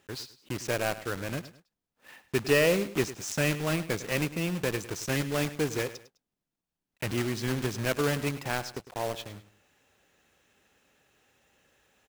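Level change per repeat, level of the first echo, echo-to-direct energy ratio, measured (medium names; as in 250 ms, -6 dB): -10.0 dB, -15.0 dB, -14.5 dB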